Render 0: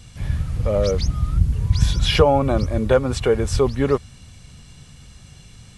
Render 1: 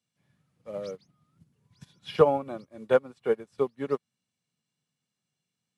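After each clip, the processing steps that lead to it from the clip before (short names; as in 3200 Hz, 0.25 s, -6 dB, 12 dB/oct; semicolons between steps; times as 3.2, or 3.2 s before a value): dynamic EQ 6500 Hz, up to -5 dB, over -44 dBFS, Q 1.3; HPF 160 Hz 24 dB/oct; upward expander 2.5:1, over -33 dBFS; gain -2 dB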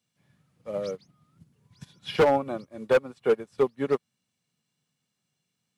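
overloaded stage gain 19.5 dB; gain +4.5 dB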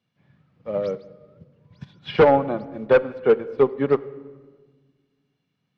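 air absorption 260 m; on a send at -16.5 dB: reverb RT60 1.5 s, pre-delay 13 ms; on the sum: gain +6.5 dB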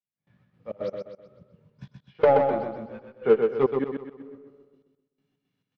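chorus 2.2 Hz, delay 15.5 ms, depth 3.4 ms; step gate "...xx.xx.x." 168 bpm -24 dB; on a send: feedback echo 0.127 s, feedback 41%, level -5 dB; on the sum: gain -1 dB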